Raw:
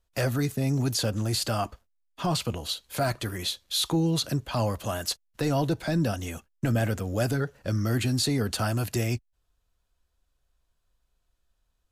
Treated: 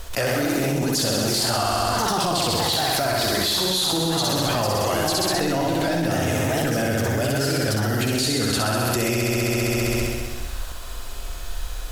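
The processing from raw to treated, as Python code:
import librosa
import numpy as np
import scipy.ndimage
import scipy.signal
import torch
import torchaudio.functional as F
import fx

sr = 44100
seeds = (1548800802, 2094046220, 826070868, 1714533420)

p1 = fx.peak_eq(x, sr, hz=140.0, db=-8.5, octaves=1.5)
p2 = p1 + fx.room_flutter(p1, sr, wall_m=11.3, rt60_s=1.5, dry=0)
p3 = fx.echo_pitch(p2, sr, ms=107, semitones=2, count=3, db_per_echo=-6.0)
y = fx.env_flatten(p3, sr, amount_pct=100)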